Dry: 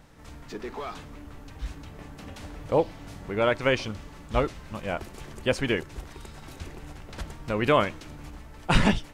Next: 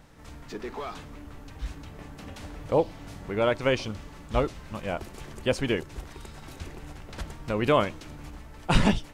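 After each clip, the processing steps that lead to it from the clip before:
dynamic equaliser 1,800 Hz, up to −4 dB, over −38 dBFS, Q 1.2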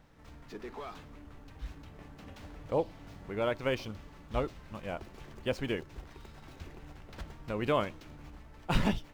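running median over 5 samples
level −7 dB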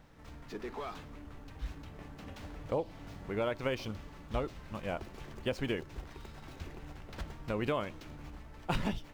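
downward compressor 5 to 1, threshold −31 dBFS, peak gain reduction 10.5 dB
level +2 dB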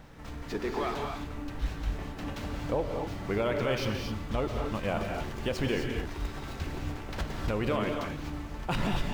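brickwall limiter −29 dBFS, peak gain reduction 9.5 dB
reverb whose tail is shaped and stops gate 280 ms rising, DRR 2.5 dB
level +8 dB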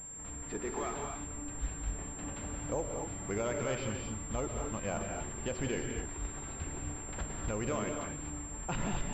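switching amplifier with a slow clock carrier 7,400 Hz
level −5.5 dB

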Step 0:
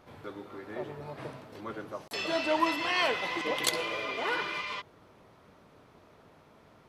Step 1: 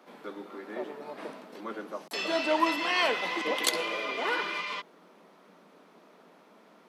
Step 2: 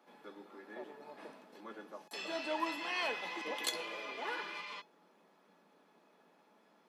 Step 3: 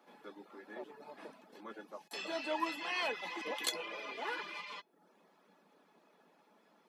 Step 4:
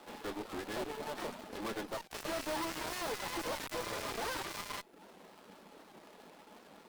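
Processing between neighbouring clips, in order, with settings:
Butterworth high-pass 170 Hz 96 dB per octave; level +1.5 dB
tuned comb filter 840 Hz, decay 0.16 s, harmonics all, mix 80%; level +2 dB
reverb reduction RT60 0.52 s; level +1 dB
gap after every zero crossing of 0.21 ms; tube saturation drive 51 dB, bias 0.75; wow of a warped record 78 rpm, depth 160 cents; level +17 dB

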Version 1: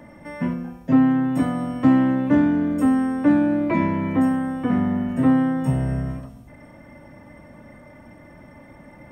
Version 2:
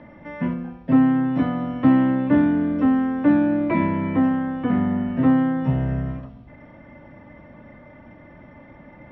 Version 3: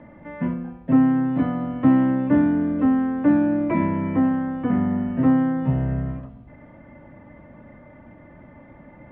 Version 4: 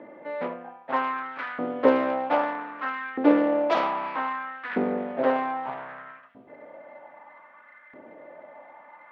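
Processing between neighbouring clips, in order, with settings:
inverse Chebyshev low-pass filter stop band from 7,400 Hz, stop band 40 dB
high-frequency loss of the air 340 metres
phase distortion by the signal itself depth 0.58 ms; auto-filter high-pass saw up 0.63 Hz 370–1,700 Hz

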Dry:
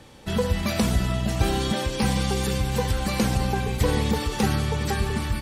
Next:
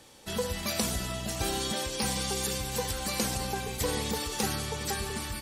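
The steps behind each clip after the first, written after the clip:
bass and treble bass −7 dB, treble +9 dB
level −6 dB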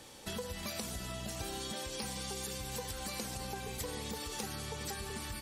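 downward compressor 5 to 1, threshold −40 dBFS, peak gain reduction 14 dB
level +1.5 dB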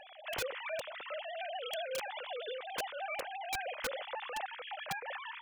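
three sine waves on the formant tracks
wrap-around overflow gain 31 dB
level +1 dB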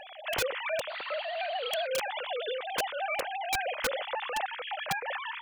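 sound drawn into the spectrogram noise, 0:00.89–0:01.87, 590–4,700 Hz −56 dBFS
level +7 dB

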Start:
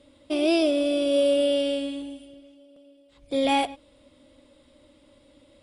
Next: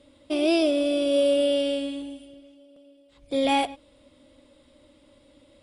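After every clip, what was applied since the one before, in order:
no processing that can be heard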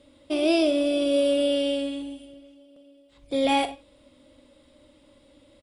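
ambience of single reflections 43 ms −13.5 dB, 63 ms −16 dB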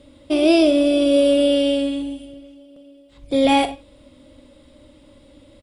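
low-shelf EQ 250 Hz +7 dB
level +5 dB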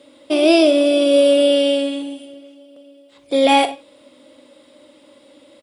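high-pass filter 340 Hz 12 dB per octave
level +4 dB

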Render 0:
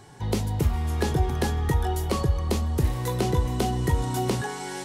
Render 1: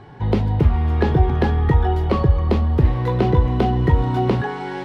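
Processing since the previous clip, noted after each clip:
high-frequency loss of the air 360 metres
level +8 dB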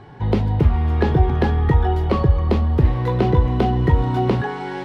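no processing that can be heard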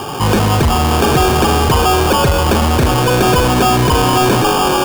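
mid-hump overdrive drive 33 dB, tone 1,500 Hz, clips at −4 dBFS
sample-rate reduction 2,000 Hz, jitter 0%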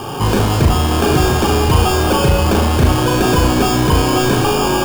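low-shelf EQ 350 Hz +4.5 dB
on a send: flutter between parallel walls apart 6.1 metres, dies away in 0.44 s
on the sum: level −4.5 dB

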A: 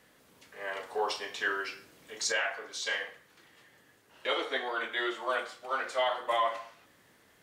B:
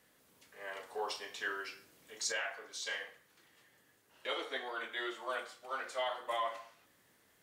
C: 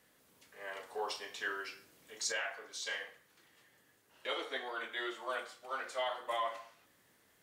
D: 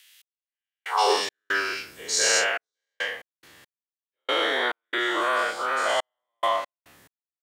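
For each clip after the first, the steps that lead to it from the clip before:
high-shelf EQ 7,000 Hz +7.5 dB; level −7.5 dB
no processing that can be heard
every bin's largest magnitude spread in time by 240 ms; high-pass filter sweep 2,900 Hz → 62 Hz, 0:00.81–0:01.39; gate pattern "x...xx.xxxxx..x." 70 BPM −60 dB; level +8 dB

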